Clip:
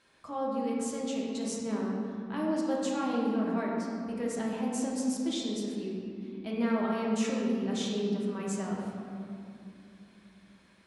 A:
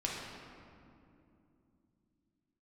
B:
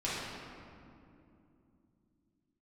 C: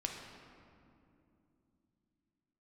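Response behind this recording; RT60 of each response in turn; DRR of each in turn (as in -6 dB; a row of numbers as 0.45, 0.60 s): A; 2.7, 2.7, 2.7 s; -4.0, -9.5, 1.0 dB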